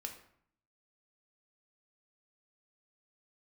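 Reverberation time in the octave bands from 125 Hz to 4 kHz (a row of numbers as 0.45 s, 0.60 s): 0.85 s, 0.80 s, 0.60 s, 0.65 s, 0.55 s, 0.45 s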